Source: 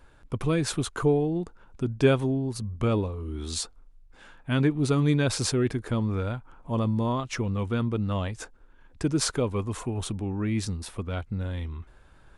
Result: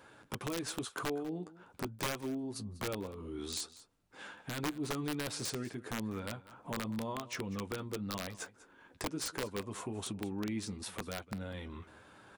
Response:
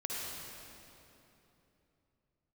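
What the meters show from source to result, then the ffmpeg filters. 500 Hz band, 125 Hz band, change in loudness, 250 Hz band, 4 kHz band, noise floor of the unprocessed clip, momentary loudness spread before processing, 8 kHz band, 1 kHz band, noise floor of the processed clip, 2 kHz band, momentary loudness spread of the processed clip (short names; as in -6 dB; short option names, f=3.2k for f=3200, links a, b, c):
-13.0 dB, -17.0 dB, -12.0 dB, -11.5 dB, -6.5 dB, -55 dBFS, 11 LU, -7.5 dB, -7.5 dB, -63 dBFS, -6.5 dB, 10 LU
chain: -af "highpass=180,acompressor=threshold=-45dB:ratio=2.5,flanger=delay=9.4:depth=1.5:regen=-37:speed=0.18:shape=sinusoidal,aeval=exprs='(mod(59.6*val(0)+1,2)-1)/59.6':c=same,aecho=1:1:196:0.126,volume=7dB"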